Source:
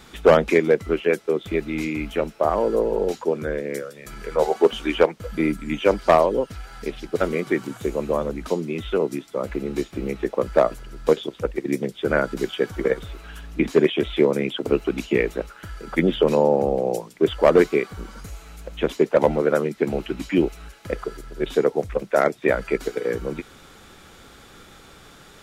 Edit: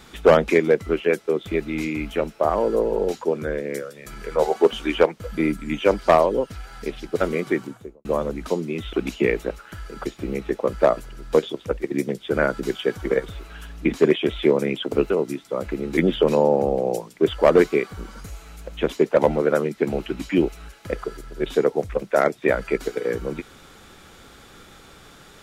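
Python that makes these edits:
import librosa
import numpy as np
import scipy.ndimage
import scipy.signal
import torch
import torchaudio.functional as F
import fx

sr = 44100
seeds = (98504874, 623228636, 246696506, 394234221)

y = fx.studio_fade_out(x, sr, start_s=7.48, length_s=0.57)
y = fx.edit(y, sr, fx.swap(start_s=8.93, length_s=0.87, other_s=14.84, other_length_s=1.13), tone=tone)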